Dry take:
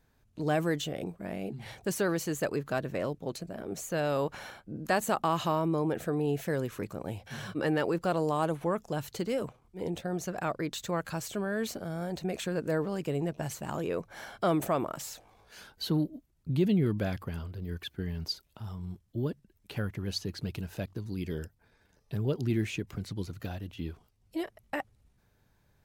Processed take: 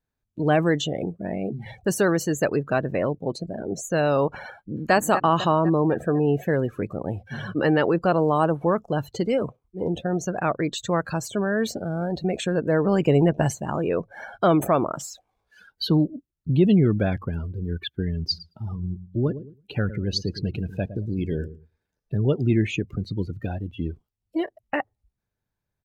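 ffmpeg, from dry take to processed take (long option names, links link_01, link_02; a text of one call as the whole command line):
ffmpeg -i in.wav -filter_complex "[0:a]asplit=2[link_01][link_02];[link_02]afade=type=in:start_time=4.51:duration=0.01,afade=type=out:start_time=4.94:duration=0.01,aecho=0:1:250|500|750|1000|1250|1500|1750|2000|2250:0.354813|0.230629|0.149909|0.0974406|0.0633364|0.0411687|0.0267596|0.0173938|0.0113059[link_03];[link_01][link_03]amix=inputs=2:normalize=0,asplit=3[link_04][link_05][link_06];[link_04]afade=type=out:start_time=12.84:duration=0.02[link_07];[link_05]acontrast=26,afade=type=in:start_time=12.84:duration=0.02,afade=type=out:start_time=13.5:duration=0.02[link_08];[link_06]afade=type=in:start_time=13.5:duration=0.02[link_09];[link_07][link_08][link_09]amix=inputs=3:normalize=0,asplit=3[link_10][link_11][link_12];[link_10]afade=type=out:start_time=18.3:duration=0.02[link_13];[link_11]asplit=2[link_14][link_15];[link_15]adelay=111,lowpass=frequency=2900:poles=1,volume=-12dB,asplit=2[link_16][link_17];[link_17]adelay=111,lowpass=frequency=2900:poles=1,volume=0.37,asplit=2[link_18][link_19];[link_19]adelay=111,lowpass=frequency=2900:poles=1,volume=0.37,asplit=2[link_20][link_21];[link_21]adelay=111,lowpass=frequency=2900:poles=1,volume=0.37[link_22];[link_14][link_16][link_18][link_20][link_22]amix=inputs=5:normalize=0,afade=type=in:start_time=18.3:duration=0.02,afade=type=out:start_time=22.2:duration=0.02[link_23];[link_12]afade=type=in:start_time=22.2:duration=0.02[link_24];[link_13][link_23][link_24]amix=inputs=3:normalize=0,afftdn=noise_reduction=24:noise_floor=-43,volume=8.5dB" out.wav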